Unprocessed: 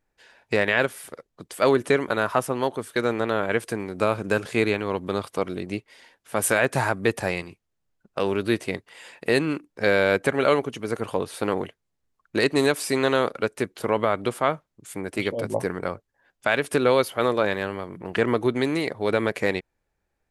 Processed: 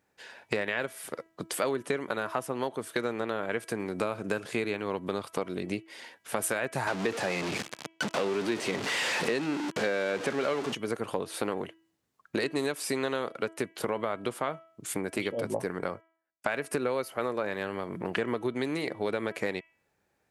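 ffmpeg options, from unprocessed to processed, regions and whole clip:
ffmpeg -i in.wav -filter_complex "[0:a]asettb=1/sr,asplit=3[link_01][link_02][link_03];[link_01]atrim=end=6.874[link_04];[link_02]atrim=start=6.87:end=10.75,asetpts=PTS-STARTPTS,afade=type=in:duration=0.004:curve=qsin,afade=type=out:start_time=3.876:duration=0.004:curve=qsin,aeval=exprs='val(0)+0.5*0.0891*sgn(val(0))':channel_layout=same,highpass=150,lowpass=6600[link_05];[link_03]atrim=start=10.746[link_06];[link_04][link_05]acrossfade=duration=0.004:curve1=hsin:curve2=qsin[link_07];[link_07][link_06]acrossfade=duration=0.004:curve1=qsin:curve2=hsin,asettb=1/sr,asplit=3[link_08][link_09][link_10];[link_08]atrim=end=15.914[link_11];[link_09]atrim=start=15.91:end=17.53,asetpts=PTS-STARTPTS,afade=type=in:duration=0.004:curve=qsin,afade=type=out:start_time=1.616:duration=0.004:curve=qsin,agate=range=-32dB:threshold=-51dB:ratio=16:release=100:detection=peak,equalizer=frequency=3400:width_type=o:width=0.34:gain=-8.5[link_12];[link_10]atrim=start=17.526[link_13];[link_11][link_12]acrossfade=duration=0.004:curve1=hsin:curve2=qsin[link_14];[link_14][link_13]acrossfade=duration=0.004:curve1=qsin:curve2=hsin,highpass=120,acompressor=threshold=-35dB:ratio=4,bandreject=frequency=326.8:width_type=h:width=4,bandreject=frequency=653.6:width_type=h:width=4,bandreject=frequency=980.4:width_type=h:width=4,bandreject=frequency=1307.2:width_type=h:width=4,bandreject=frequency=1634:width_type=h:width=4,bandreject=frequency=1960.8:width_type=h:width=4,bandreject=frequency=2287.6:width_type=h:width=4,bandreject=frequency=2614.4:width_type=h:width=4,bandreject=frequency=2941.2:width_type=h:width=4,bandreject=frequency=3268:width_type=h:width=4,volume=5.5dB" out.wav

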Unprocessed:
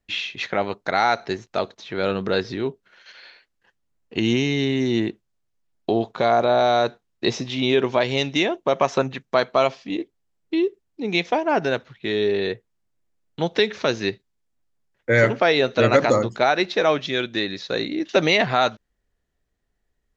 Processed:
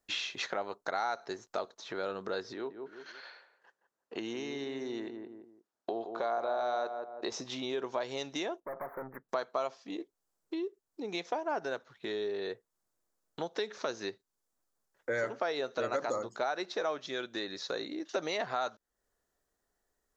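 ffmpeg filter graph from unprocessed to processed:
ffmpeg -i in.wav -filter_complex "[0:a]asettb=1/sr,asplit=3[link_01][link_02][link_03];[link_01]atrim=end=2.534[link_04];[link_02]atrim=start=2.53:end=7.32,asetpts=PTS-STARTPTS,afade=type=in:duration=0.004:curve=qsin,afade=type=out:start_time=4.786:duration=0.004:curve=qsin,highpass=frequency=320:poles=1,aemphasis=mode=reproduction:type=50fm,asplit=2[link_05][link_06];[link_06]adelay=170,lowpass=frequency=1100:poles=1,volume=-8.5dB,asplit=2[link_07][link_08];[link_08]adelay=170,lowpass=frequency=1100:poles=1,volume=0.29,asplit=2[link_09][link_10];[link_10]adelay=170,lowpass=frequency=1100:poles=1,volume=0.29[link_11];[link_05][link_07][link_09][link_11]amix=inputs=4:normalize=0,atrim=end_sample=211239[link_12];[link_03]atrim=start=7.316[link_13];[link_04][link_12]acrossfade=duration=0.004:curve1=hsin:curve2=qsin[link_14];[link_14][link_13]acrossfade=duration=0.004:curve1=qsin:curve2=hsin,asettb=1/sr,asplit=3[link_15][link_16][link_17];[link_15]atrim=end=8.604[link_18];[link_16]atrim=start=8.6:end=9.29,asetpts=PTS-STARTPTS,afade=type=in:duration=0.004:curve=qsin,afade=type=out:start_time=0.686:duration=0.004:curve=qsin,adynamicsmooth=sensitivity=6.5:basefreq=2100,aeval=exprs='(tanh(31.6*val(0)+0.65)-tanh(0.65))/31.6':channel_layout=same,asuperstop=centerf=5400:order=20:qfactor=0.57[link_19];[link_17]atrim=start=9.286[link_20];[link_18][link_19]acrossfade=duration=0.004:curve1=hsin:curve2=qsin[link_21];[link_21][link_20]acrossfade=duration=0.004:curve1=qsin:curve2=hsin,highshelf=frequency=1800:width_type=q:width=1.5:gain=-7.5,acompressor=threshold=-37dB:ratio=2.5,bass=frequency=250:gain=-13,treble=frequency=4000:gain=13" out.wav

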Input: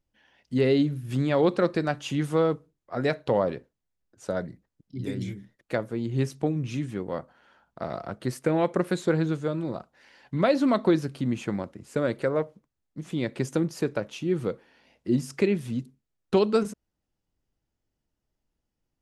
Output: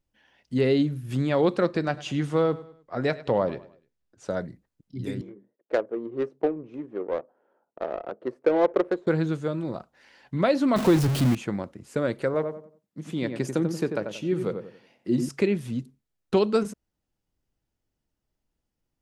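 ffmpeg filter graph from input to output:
ffmpeg -i in.wav -filter_complex "[0:a]asettb=1/sr,asplit=3[link_01][link_02][link_03];[link_01]atrim=end=1.654[link_04];[link_02]atrim=start=1.65:end=4.35,asetpts=PTS-STARTPTS,afade=type=in:duration=0.004:curve=qsin,afade=type=out:start_time=2.696:duration=0.004:curve=qsin,lowpass=7400,aecho=1:1:101|202|303:0.126|0.0491|0.0191,atrim=end_sample=119070[link_05];[link_03]atrim=start=4.346[link_06];[link_04][link_05]acrossfade=duration=0.004:curve1=hsin:curve2=qsin[link_07];[link_07][link_06]acrossfade=duration=0.004:curve1=qsin:curve2=hsin,asettb=1/sr,asplit=3[link_08][link_09][link_10];[link_08]atrim=end=5.214[link_11];[link_09]atrim=start=5.21:end=9.07,asetpts=PTS-STARTPTS,afade=type=in:duration=0.004:curve=qsin,afade=type=out:start_time=3.856:duration=0.004:curve=qsin,highpass=frequency=430:width_type=q:width=1.9,highshelf=frequency=7100:gain=11.5,adynamicsmooth=sensitivity=1:basefreq=600[link_12];[link_10]atrim=start=9.066[link_13];[link_11][link_12]acrossfade=duration=0.004:curve1=hsin:curve2=qsin[link_14];[link_14][link_13]acrossfade=duration=0.004:curve1=qsin:curve2=hsin,asettb=1/sr,asplit=3[link_15][link_16][link_17];[link_15]atrim=end=10.764[link_18];[link_16]atrim=start=10.76:end=11.35,asetpts=PTS-STARTPTS,afade=type=in:duration=0.004:curve=qsin,afade=type=out:start_time=0.586:duration=0.004:curve=qsin,aeval=exprs='val(0)+0.5*0.0596*sgn(val(0))':channel_layout=same,equalizer=frequency=130:width_type=o:width=0.62:gain=6[link_19];[link_17]atrim=start=11.346[link_20];[link_18][link_19]acrossfade=duration=0.004:curve1=hsin:curve2=qsin[link_21];[link_21][link_20]acrossfade=duration=0.004:curve1=qsin:curve2=hsin,asettb=1/sr,asplit=3[link_22][link_23][link_24];[link_22]atrim=end=12.344[link_25];[link_23]atrim=start=12.34:end=15.29,asetpts=PTS-STARTPTS,afade=type=in:duration=0.004:curve=qsin,afade=type=out:start_time=2.946:duration=0.004:curve=qsin,highpass=120,asplit=2[link_26][link_27];[link_27]adelay=91,lowpass=frequency=1500:poles=1,volume=-6dB,asplit=2[link_28][link_29];[link_29]adelay=91,lowpass=frequency=1500:poles=1,volume=0.33,asplit=2[link_30][link_31];[link_31]adelay=91,lowpass=frequency=1500:poles=1,volume=0.33,asplit=2[link_32][link_33];[link_33]adelay=91,lowpass=frequency=1500:poles=1,volume=0.33[link_34];[link_26][link_28][link_30][link_32][link_34]amix=inputs=5:normalize=0,atrim=end_sample=130095[link_35];[link_24]atrim=start=15.286[link_36];[link_25][link_35]acrossfade=duration=0.004:curve1=hsin:curve2=qsin[link_37];[link_37][link_36]acrossfade=duration=0.004:curve1=qsin:curve2=hsin" out.wav

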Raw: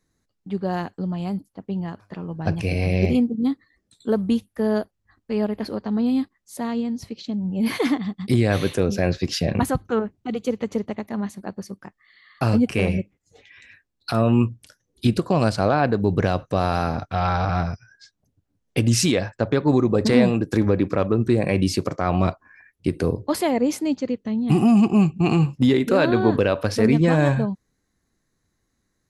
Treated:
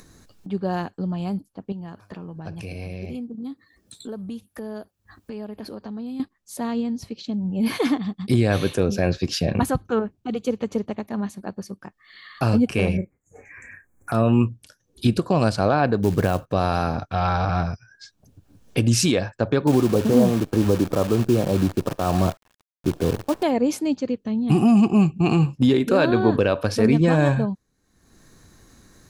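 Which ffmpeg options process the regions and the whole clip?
ffmpeg -i in.wav -filter_complex "[0:a]asettb=1/sr,asplit=3[link_01][link_02][link_03];[link_01]atrim=end=1.724[link_04];[link_02]atrim=start=1.72:end=6.2,asetpts=PTS-STARTPTS,afade=type=in:duration=0.004:curve=qsin,afade=type=out:start_time=4.476:duration=0.004:curve=qsin,highpass=50,acompressor=threshold=-34dB:ratio=3:attack=3.2:release=140:knee=1:detection=peak,highshelf=frequency=11000:gain=8.5[link_05];[link_03]atrim=start=6.196[link_06];[link_04][link_05]acrossfade=duration=0.004:curve1=hsin:curve2=qsin[link_07];[link_07][link_06]acrossfade=duration=0.004:curve1=qsin:curve2=hsin,asettb=1/sr,asplit=3[link_08][link_09][link_10];[link_08]atrim=end=12.974[link_11];[link_09]atrim=start=12.97:end=14.12,asetpts=PTS-STARTPTS,afade=type=in:duration=0.004:curve=qsin,afade=type=out:start_time=1.146:duration=0.004:curve=qsin,asuperstop=centerf=3900:order=12:qfactor=0.92,asplit=2[link_12][link_13];[link_13]adelay=33,volume=-11.5dB[link_14];[link_12][link_14]amix=inputs=2:normalize=0,atrim=end_sample=50715[link_15];[link_10]atrim=start=14.116[link_16];[link_11][link_15]acrossfade=duration=0.004:curve1=hsin:curve2=qsin[link_17];[link_17][link_16]acrossfade=duration=0.004:curve1=qsin:curve2=hsin,asettb=1/sr,asplit=3[link_18][link_19][link_20];[link_18]atrim=end=16.034[link_21];[link_19]atrim=start=16.03:end=16.52,asetpts=PTS-STARTPTS,afade=type=in:duration=0.004:curve=qsin,afade=type=out:start_time=0.486:duration=0.004:curve=qsin,lowpass=2900,acrusher=bits=5:mode=log:mix=0:aa=0.000001[link_22];[link_20]atrim=start=16.516[link_23];[link_21][link_22]acrossfade=duration=0.004:curve1=hsin:curve2=qsin[link_24];[link_24][link_23]acrossfade=duration=0.004:curve1=qsin:curve2=hsin,asettb=1/sr,asplit=3[link_25][link_26][link_27];[link_25]atrim=end=19.674[link_28];[link_26]atrim=start=19.67:end=23.43,asetpts=PTS-STARTPTS,afade=type=in:duration=0.004:curve=qsin,afade=type=out:start_time=3.756:duration=0.004:curve=qsin,lowpass=frequency=1200:width=0.5412,lowpass=frequency=1200:width=1.3066,acrusher=bits=6:dc=4:mix=0:aa=0.000001[link_29];[link_27]atrim=start=23.426[link_30];[link_28][link_29]acrossfade=duration=0.004:curve1=hsin:curve2=qsin[link_31];[link_31][link_30]acrossfade=duration=0.004:curve1=qsin:curve2=hsin,bandreject=frequency=2000:width=10,acompressor=mode=upward:threshold=-33dB:ratio=2.5" out.wav

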